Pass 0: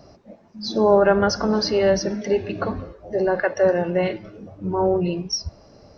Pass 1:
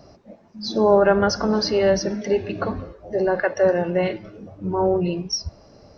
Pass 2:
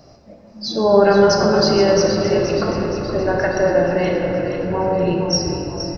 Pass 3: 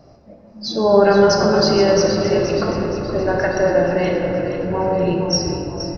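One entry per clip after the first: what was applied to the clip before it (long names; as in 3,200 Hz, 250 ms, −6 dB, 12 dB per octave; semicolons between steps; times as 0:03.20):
no processing that can be heard
high-shelf EQ 4,100 Hz +5.5 dB; on a send: echo with shifted repeats 473 ms, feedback 58%, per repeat −41 Hz, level −9 dB; on the sum: rectangular room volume 200 cubic metres, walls hard, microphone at 0.47 metres
one half of a high-frequency compander decoder only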